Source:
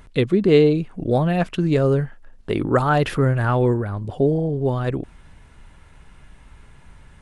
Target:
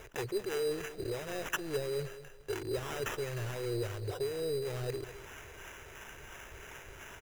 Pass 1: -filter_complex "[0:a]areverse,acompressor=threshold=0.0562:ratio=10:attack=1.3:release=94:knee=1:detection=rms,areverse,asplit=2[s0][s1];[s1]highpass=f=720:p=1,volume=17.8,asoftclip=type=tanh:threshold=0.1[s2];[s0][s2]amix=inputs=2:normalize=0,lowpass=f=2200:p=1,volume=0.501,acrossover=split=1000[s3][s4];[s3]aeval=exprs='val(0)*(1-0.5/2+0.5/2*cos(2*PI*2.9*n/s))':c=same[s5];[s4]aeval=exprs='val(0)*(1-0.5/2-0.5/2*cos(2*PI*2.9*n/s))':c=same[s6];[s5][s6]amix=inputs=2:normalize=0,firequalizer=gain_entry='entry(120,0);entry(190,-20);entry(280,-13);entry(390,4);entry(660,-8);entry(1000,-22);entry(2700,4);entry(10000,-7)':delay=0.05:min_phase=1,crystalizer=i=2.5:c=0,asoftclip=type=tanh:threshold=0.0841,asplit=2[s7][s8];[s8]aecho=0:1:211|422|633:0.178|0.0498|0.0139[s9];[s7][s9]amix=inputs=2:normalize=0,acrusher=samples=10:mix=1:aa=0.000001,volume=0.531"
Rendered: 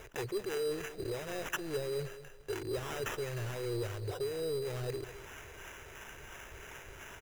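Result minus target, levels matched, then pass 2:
saturation: distortion +21 dB
-filter_complex "[0:a]areverse,acompressor=threshold=0.0562:ratio=10:attack=1.3:release=94:knee=1:detection=rms,areverse,asplit=2[s0][s1];[s1]highpass=f=720:p=1,volume=17.8,asoftclip=type=tanh:threshold=0.1[s2];[s0][s2]amix=inputs=2:normalize=0,lowpass=f=2200:p=1,volume=0.501,acrossover=split=1000[s3][s4];[s3]aeval=exprs='val(0)*(1-0.5/2+0.5/2*cos(2*PI*2.9*n/s))':c=same[s5];[s4]aeval=exprs='val(0)*(1-0.5/2-0.5/2*cos(2*PI*2.9*n/s))':c=same[s6];[s5][s6]amix=inputs=2:normalize=0,firequalizer=gain_entry='entry(120,0);entry(190,-20);entry(280,-13);entry(390,4);entry(660,-8);entry(1000,-22);entry(2700,4);entry(10000,-7)':delay=0.05:min_phase=1,crystalizer=i=2.5:c=0,asoftclip=type=tanh:threshold=0.316,asplit=2[s7][s8];[s8]aecho=0:1:211|422|633:0.178|0.0498|0.0139[s9];[s7][s9]amix=inputs=2:normalize=0,acrusher=samples=10:mix=1:aa=0.000001,volume=0.531"

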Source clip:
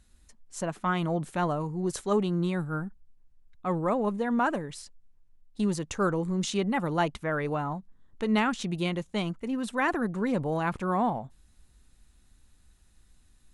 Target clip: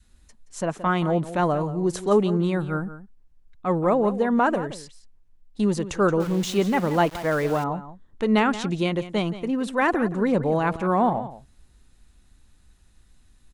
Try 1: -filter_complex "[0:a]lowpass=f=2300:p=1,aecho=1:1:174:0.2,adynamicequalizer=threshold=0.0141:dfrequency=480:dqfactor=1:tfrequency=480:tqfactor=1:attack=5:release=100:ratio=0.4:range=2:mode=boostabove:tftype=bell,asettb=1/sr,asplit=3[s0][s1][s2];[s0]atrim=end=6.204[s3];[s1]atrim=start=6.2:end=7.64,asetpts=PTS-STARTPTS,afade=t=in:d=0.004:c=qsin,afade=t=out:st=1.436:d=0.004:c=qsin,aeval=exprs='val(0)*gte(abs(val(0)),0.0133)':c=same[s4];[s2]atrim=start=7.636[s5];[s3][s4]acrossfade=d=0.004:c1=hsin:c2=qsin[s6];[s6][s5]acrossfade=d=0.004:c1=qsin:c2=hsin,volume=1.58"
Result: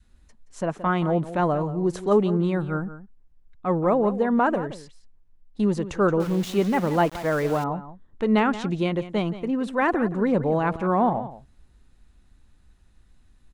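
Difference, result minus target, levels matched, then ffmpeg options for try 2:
8 kHz band -6.0 dB
-filter_complex "[0:a]lowpass=f=7600:p=1,aecho=1:1:174:0.2,adynamicequalizer=threshold=0.0141:dfrequency=480:dqfactor=1:tfrequency=480:tqfactor=1:attack=5:release=100:ratio=0.4:range=2:mode=boostabove:tftype=bell,asettb=1/sr,asplit=3[s0][s1][s2];[s0]atrim=end=6.204[s3];[s1]atrim=start=6.2:end=7.64,asetpts=PTS-STARTPTS,afade=t=in:d=0.004:c=qsin,afade=t=out:st=1.436:d=0.004:c=qsin,aeval=exprs='val(0)*gte(abs(val(0)),0.0133)':c=same[s4];[s2]atrim=start=7.636[s5];[s3][s4]acrossfade=d=0.004:c1=hsin:c2=qsin[s6];[s6][s5]acrossfade=d=0.004:c1=qsin:c2=hsin,volume=1.58"

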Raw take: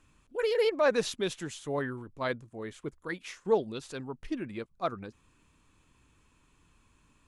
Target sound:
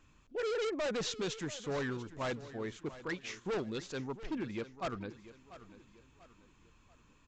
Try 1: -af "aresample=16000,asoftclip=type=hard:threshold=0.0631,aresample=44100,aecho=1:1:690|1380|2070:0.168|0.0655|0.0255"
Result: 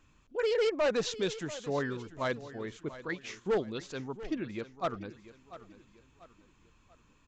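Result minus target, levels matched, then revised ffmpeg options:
hard clipper: distortion -7 dB
-af "aresample=16000,asoftclip=type=hard:threshold=0.0237,aresample=44100,aecho=1:1:690|1380|2070:0.168|0.0655|0.0255"

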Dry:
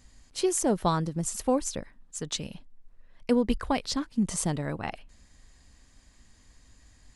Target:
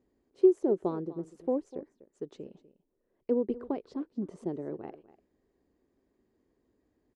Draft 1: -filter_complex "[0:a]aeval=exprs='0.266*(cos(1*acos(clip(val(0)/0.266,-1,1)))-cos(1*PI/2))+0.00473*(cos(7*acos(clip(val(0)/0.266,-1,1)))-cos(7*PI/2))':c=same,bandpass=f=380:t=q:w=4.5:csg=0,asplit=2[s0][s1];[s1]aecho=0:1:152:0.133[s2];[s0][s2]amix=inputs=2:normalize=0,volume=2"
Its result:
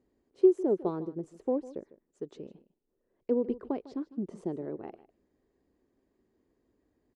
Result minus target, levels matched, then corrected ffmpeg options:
echo 95 ms early
-filter_complex "[0:a]aeval=exprs='0.266*(cos(1*acos(clip(val(0)/0.266,-1,1)))-cos(1*PI/2))+0.00473*(cos(7*acos(clip(val(0)/0.266,-1,1)))-cos(7*PI/2))':c=same,bandpass=f=380:t=q:w=4.5:csg=0,asplit=2[s0][s1];[s1]aecho=0:1:247:0.133[s2];[s0][s2]amix=inputs=2:normalize=0,volume=2"

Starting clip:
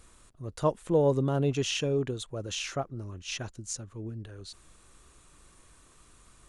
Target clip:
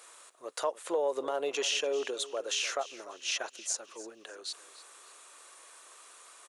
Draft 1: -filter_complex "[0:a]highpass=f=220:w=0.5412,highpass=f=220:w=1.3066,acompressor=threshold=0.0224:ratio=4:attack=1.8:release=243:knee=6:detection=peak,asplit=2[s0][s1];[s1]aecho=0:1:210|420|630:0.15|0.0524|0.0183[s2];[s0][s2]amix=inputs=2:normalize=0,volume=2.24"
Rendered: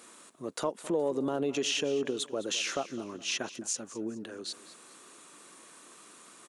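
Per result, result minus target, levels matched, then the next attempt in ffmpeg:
250 Hz band +11.5 dB; echo 87 ms early
-filter_complex "[0:a]highpass=f=490:w=0.5412,highpass=f=490:w=1.3066,acompressor=threshold=0.0224:ratio=4:attack=1.8:release=243:knee=6:detection=peak,asplit=2[s0][s1];[s1]aecho=0:1:210|420|630:0.15|0.0524|0.0183[s2];[s0][s2]amix=inputs=2:normalize=0,volume=2.24"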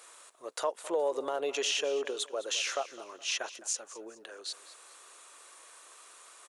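echo 87 ms early
-filter_complex "[0:a]highpass=f=490:w=0.5412,highpass=f=490:w=1.3066,acompressor=threshold=0.0224:ratio=4:attack=1.8:release=243:knee=6:detection=peak,asplit=2[s0][s1];[s1]aecho=0:1:297|594|891:0.15|0.0524|0.0183[s2];[s0][s2]amix=inputs=2:normalize=0,volume=2.24"

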